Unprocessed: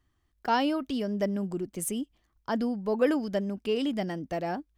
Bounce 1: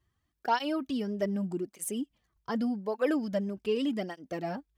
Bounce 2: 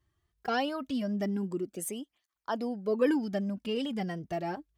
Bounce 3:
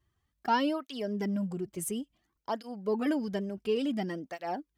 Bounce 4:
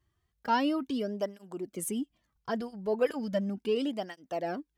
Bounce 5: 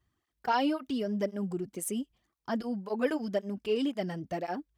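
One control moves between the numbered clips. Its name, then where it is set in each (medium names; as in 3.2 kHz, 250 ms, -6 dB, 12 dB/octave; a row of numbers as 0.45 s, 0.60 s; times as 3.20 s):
cancelling through-zero flanger, nulls at: 0.84 Hz, 0.22 Hz, 0.57 Hz, 0.36 Hz, 1.9 Hz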